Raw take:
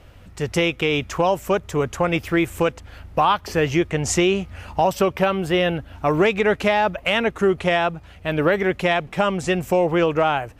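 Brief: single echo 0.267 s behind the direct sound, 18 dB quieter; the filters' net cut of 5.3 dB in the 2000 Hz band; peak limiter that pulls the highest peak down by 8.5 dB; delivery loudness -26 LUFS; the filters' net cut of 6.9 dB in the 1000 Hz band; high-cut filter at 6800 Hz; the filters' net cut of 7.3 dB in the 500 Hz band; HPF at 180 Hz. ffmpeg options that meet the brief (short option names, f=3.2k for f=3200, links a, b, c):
-af "highpass=180,lowpass=6.8k,equalizer=f=500:t=o:g=-8,equalizer=f=1k:t=o:g=-5,equalizer=f=2k:t=o:g=-5,alimiter=limit=-17.5dB:level=0:latency=1,aecho=1:1:267:0.126,volume=4dB"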